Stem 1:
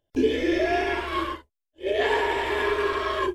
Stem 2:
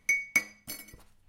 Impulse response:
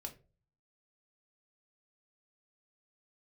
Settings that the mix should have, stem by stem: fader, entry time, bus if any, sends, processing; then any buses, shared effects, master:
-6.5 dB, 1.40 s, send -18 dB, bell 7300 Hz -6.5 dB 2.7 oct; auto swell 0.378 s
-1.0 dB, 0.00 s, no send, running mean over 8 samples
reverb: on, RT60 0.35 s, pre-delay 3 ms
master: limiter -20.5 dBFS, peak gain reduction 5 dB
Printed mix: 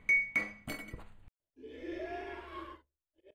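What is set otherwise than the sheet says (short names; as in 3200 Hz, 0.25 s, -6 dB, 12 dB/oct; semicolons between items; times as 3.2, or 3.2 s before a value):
stem 1 -6.5 dB -> -17.5 dB; stem 2 -1.0 dB -> +7.0 dB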